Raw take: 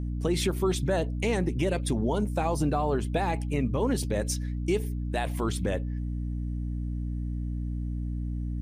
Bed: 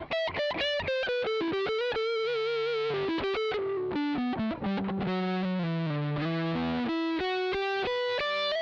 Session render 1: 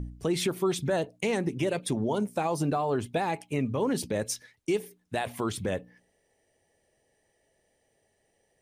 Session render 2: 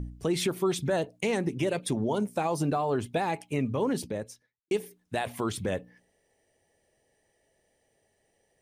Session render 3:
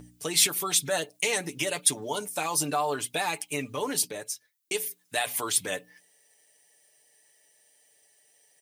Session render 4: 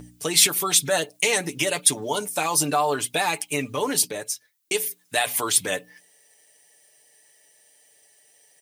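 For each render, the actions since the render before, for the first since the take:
de-hum 60 Hz, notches 5
3.78–4.71 s: studio fade out
tilt EQ +4.5 dB/octave; comb 6.8 ms, depth 59%
trim +5.5 dB; peak limiter -3 dBFS, peak gain reduction 1.5 dB

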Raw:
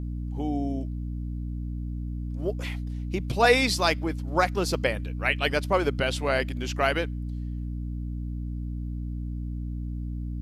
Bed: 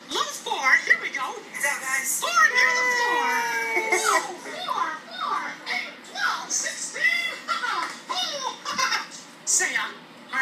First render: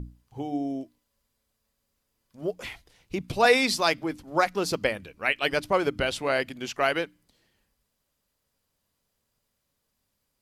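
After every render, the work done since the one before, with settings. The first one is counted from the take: hum notches 60/120/180/240/300 Hz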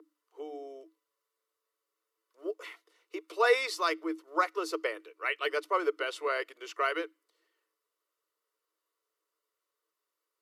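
rippled Chebyshev high-pass 310 Hz, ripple 9 dB; comb of notches 820 Hz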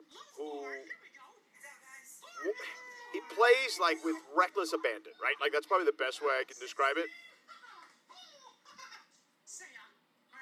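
add bed -27.5 dB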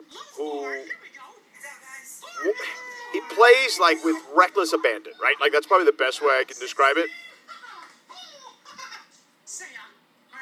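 trim +11.5 dB; peak limiter -3 dBFS, peak gain reduction 1.5 dB

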